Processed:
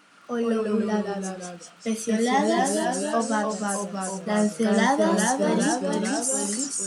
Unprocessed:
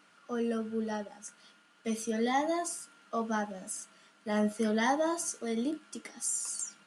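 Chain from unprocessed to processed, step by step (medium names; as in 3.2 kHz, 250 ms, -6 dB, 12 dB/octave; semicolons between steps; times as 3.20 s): ever faster or slower copies 115 ms, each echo -1 st, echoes 3; crackle 43 per s -54 dBFS; trim +6.5 dB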